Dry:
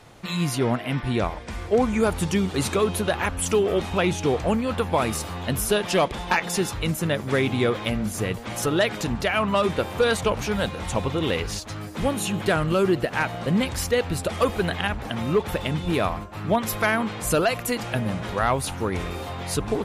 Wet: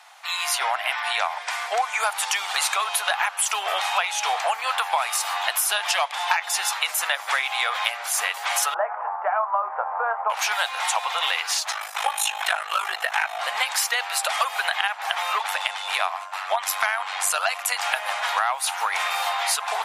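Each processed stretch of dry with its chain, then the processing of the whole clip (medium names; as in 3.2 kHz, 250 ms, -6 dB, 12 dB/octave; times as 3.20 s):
8.74–10.30 s: inverse Chebyshev low-pass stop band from 3.8 kHz, stop band 60 dB + doubling 26 ms -12 dB
11.71–13.40 s: band-stop 4.6 kHz, Q 8.1 + comb 6 ms, depth 69% + ring modulator 26 Hz
15.46–17.83 s: Chebyshev low-pass 10 kHz + AM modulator 96 Hz, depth 45%
whole clip: level rider; elliptic high-pass 750 Hz, stop band 60 dB; compression 6:1, threshold -24 dBFS; trim +4 dB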